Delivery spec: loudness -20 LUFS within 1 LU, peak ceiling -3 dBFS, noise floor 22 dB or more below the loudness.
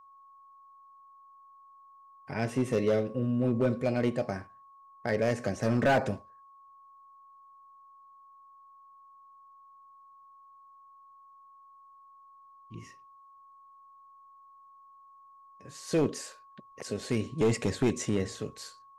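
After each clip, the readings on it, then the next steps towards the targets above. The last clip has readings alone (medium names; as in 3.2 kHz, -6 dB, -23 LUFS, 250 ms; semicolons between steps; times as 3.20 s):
clipped samples 0.7%; clipping level -19.5 dBFS; steady tone 1.1 kHz; tone level -53 dBFS; loudness -30.0 LUFS; peak level -19.5 dBFS; loudness target -20.0 LUFS
-> clip repair -19.5 dBFS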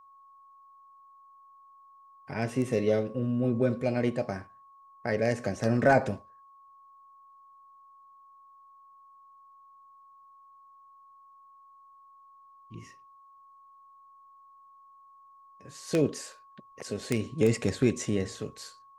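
clipped samples 0.0%; steady tone 1.1 kHz; tone level -53 dBFS
-> band-stop 1.1 kHz, Q 30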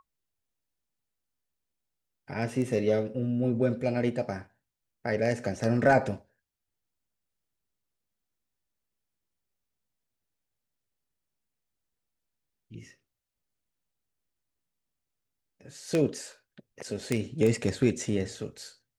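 steady tone not found; loudness -28.5 LUFS; peak level -10.5 dBFS; loudness target -20.0 LUFS
-> trim +8.5 dB; peak limiter -3 dBFS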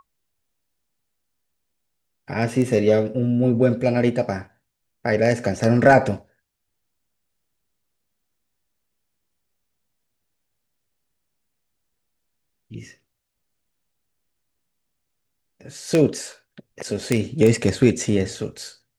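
loudness -20.5 LUFS; peak level -3.0 dBFS; noise floor -76 dBFS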